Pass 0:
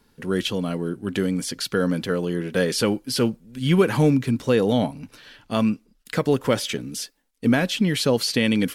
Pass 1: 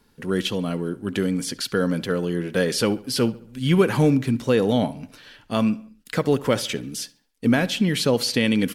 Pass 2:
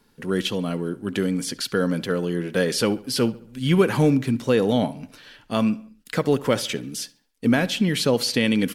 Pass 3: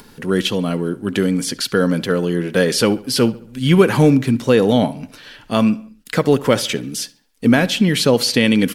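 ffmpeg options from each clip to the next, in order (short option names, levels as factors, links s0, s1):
-filter_complex "[0:a]asplit=2[s0][s1];[s1]adelay=69,lowpass=f=4000:p=1,volume=0.112,asplit=2[s2][s3];[s3]adelay=69,lowpass=f=4000:p=1,volume=0.49,asplit=2[s4][s5];[s5]adelay=69,lowpass=f=4000:p=1,volume=0.49,asplit=2[s6][s7];[s7]adelay=69,lowpass=f=4000:p=1,volume=0.49[s8];[s0][s2][s4][s6][s8]amix=inputs=5:normalize=0"
-af "equalizer=f=65:t=o:w=0.74:g=-9"
-af "acompressor=mode=upward:threshold=0.01:ratio=2.5,volume=2"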